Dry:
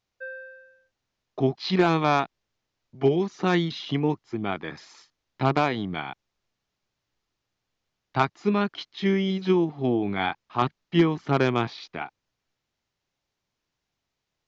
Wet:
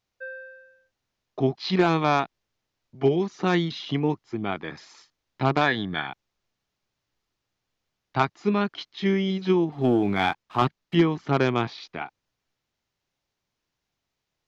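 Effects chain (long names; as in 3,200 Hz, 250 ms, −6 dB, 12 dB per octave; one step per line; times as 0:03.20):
0:05.61–0:06.07: hollow resonant body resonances 1,700/3,500 Hz, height 16 dB, ringing for 20 ms
0:09.72–0:10.95: leveller curve on the samples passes 1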